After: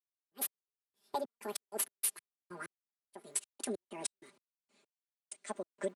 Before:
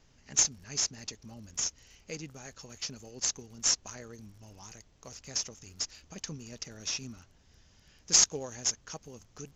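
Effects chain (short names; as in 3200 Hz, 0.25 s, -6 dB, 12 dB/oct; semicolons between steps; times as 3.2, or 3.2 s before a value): speed glide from 189% -> 132%; HPF 270 Hz 24 dB/oct; high shelf 4100 Hz -10.5 dB; comb 5 ms, depth 93%; compressor 8:1, threshold -46 dBFS, peak gain reduction 21.5 dB; notch 790 Hz, Q 18; step gate "..x...xx.x.x.x" 96 bpm -60 dB; three-band expander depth 100%; gain +9 dB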